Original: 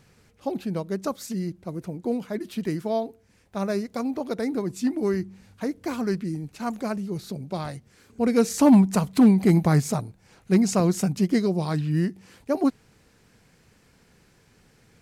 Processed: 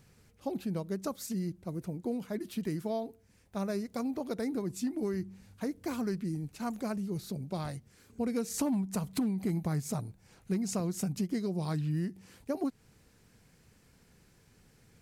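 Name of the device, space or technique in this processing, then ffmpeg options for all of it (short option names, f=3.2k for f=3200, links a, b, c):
ASMR close-microphone chain: -af "lowshelf=f=220:g=5.5,acompressor=threshold=-22dB:ratio=6,highshelf=f=7.6k:g=8,volume=-7dB"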